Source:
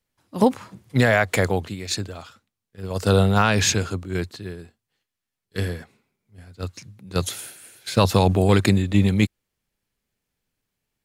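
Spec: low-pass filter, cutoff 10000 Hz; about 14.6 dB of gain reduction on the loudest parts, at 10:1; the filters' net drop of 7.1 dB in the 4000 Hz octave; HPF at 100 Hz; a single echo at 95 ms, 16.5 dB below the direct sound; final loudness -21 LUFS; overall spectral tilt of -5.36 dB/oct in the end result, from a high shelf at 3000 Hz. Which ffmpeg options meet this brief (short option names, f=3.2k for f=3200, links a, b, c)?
-af "highpass=100,lowpass=10k,highshelf=f=3k:g=-6,equalizer=f=4k:t=o:g=-4,acompressor=threshold=-28dB:ratio=10,aecho=1:1:95:0.15,volume=14dB"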